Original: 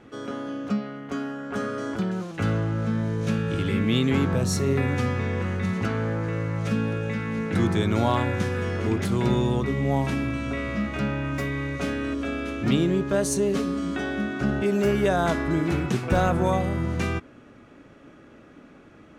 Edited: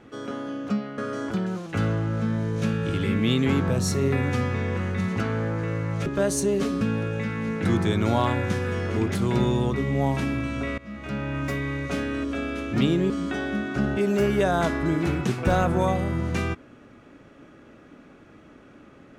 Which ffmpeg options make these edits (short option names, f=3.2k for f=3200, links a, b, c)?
-filter_complex "[0:a]asplit=6[a][b][c][d][e][f];[a]atrim=end=0.982[g];[b]atrim=start=1.628:end=6.712[h];[c]atrim=start=12.998:end=13.752[i];[d]atrim=start=6.708:end=10.68,asetpts=PTS-STARTPTS,afade=t=out:st=3.968:d=0.004:c=hsin:silence=0.0891251[j];[e]atrim=start=10.68:end=13.002,asetpts=PTS-STARTPTS,afade=t=in:d=0.6:silence=0.0891251[k];[f]atrim=start=13.748[l];[g][h]acrossfade=d=0.004:c1=hsin:c2=hsin[m];[m][i]acrossfade=d=0.004:c1=hsin:c2=hsin[n];[j][k]concat=n=2:v=0:a=1[o];[n][o]acrossfade=d=0.004:c1=hsin:c2=hsin[p];[p][l]acrossfade=d=0.004:c1=hsin:c2=hsin"